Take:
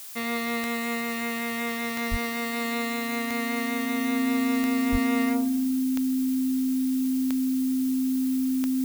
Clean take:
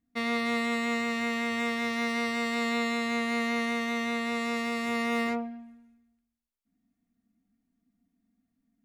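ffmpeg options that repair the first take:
-filter_complex "[0:a]adeclick=t=4,bandreject=f=260:w=30,asplit=3[s0][s1][s2];[s0]afade=t=out:st=2.1:d=0.02[s3];[s1]highpass=f=140:w=0.5412,highpass=f=140:w=1.3066,afade=t=in:st=2.1:d=0.02,afade=t=out:st=2.22:d=0.02[s4];[s2]afade=t=in:st=2.22:d=0.02[s5];[s3][s4][s5]amix=inputs=3:normalize=0,asplit=3[s6][s7][s8];[s6]afade=t=out:st=4.91:d=0.02[s9];[s7]highpass=f=140:w=0.5412,highpass=f=140:w=1.3066,afade=t=in:st=4.91:d=0.02,afade=t=out:st=5.03:d=0.02[s10];[s8]afade=t=in:st=5.03:d=0.02[s11];[s9][s10][s11]amix=inputs=3:normalize=0,afftdn=nr=30:nf=-30"

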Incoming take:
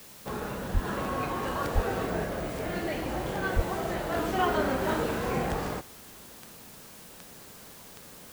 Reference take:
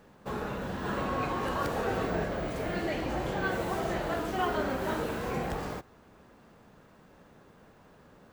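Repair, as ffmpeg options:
-filter_complex "[0:a]adeclick=t=4,asplit=3[s0][s1][s2];[s0]afade=t=out:st=0.73:d=0.02[s3];[s1]highpass=f=140:w=0.5412,highpass=f=140:w=1.3066,afade=t=in:st=0.73:d=0.02,afade=t=out:st=0.85:d=0.02[s4];[s2]afade=t=in:st=0.85:d=0.02[s5];[s3][s4][s5]amix=inputs=3:normalize=0,asplit=3[s6][s7][s8];[s6]afade=t=out:st=1.74:d=0.02[s9];[s7]highpass=f=140:w=0.5412,highpass=f=140:w=1.3066,afade=t=in:st=1.74:d=0.02,afade=t=out:st=1.86:d=0.02[s10];[s8]afade=t=in:st=1.86:d=0.02[s11];[s9][s10][s11]amix=inputs=3:normalize=0,asplit=3[s12][s13][s14];[s12]afade=t=out:st=3.55:d=0.02[s15];[s13]highpass=f=140:w=0.5412,highpass=f=140:w=1.3066,afade=t=in:st=3.55:d=0.02,afade=t=out:st=3.67:d=0.02[s16];[s14]afade=t=in:st=3.67:d=0.02[s17];[s15][s16][s17]amix=inputs=3:normalize=0,afwtdn=0.0032,asetnsamples=n=441:p=0,asendcmd='4.14 volume volume -3.5dB',volume=1"

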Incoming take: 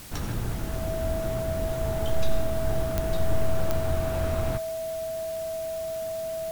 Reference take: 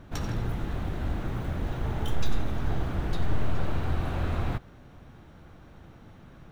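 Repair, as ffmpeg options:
-af "adeclick=t=4,bandreject=f=650:w=30,afwtdn=0.0056"

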